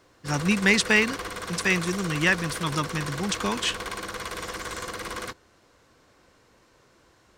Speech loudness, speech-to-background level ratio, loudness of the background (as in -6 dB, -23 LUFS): -24.5 LUFS, 9.5 dB, -34.0 LUFS